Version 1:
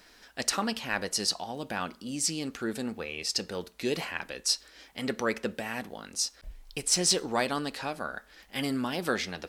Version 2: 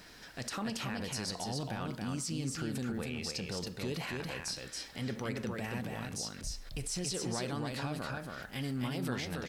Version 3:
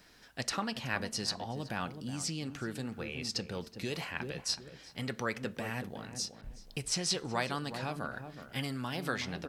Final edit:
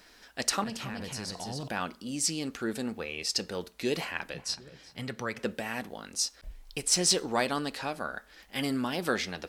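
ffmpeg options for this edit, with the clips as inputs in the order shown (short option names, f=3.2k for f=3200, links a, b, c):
-filter_complex "[0:a]asplit=3[a][b][c];[a]atrim=end=0.642[d];[1:a]atrim=start=0.638:end=1.682[e];[b]atrim=start=1.678:end=4.342[f];[2:a]atrim=start=4.338:end=5.392[g];[c]atrim=start=5.388[h];[d][e]acrossfade=d=0.004:c1=hsin:c2=hsin[i];[i][f]acrossfade=d=0.004:c1=hsin:c2=hsin[j];[j][g]acrossfade=d=0.004:c1=hsin:c2=hsin[k];[k][h]acrossfade=d=0.004:c1=hsin:c2=hsin"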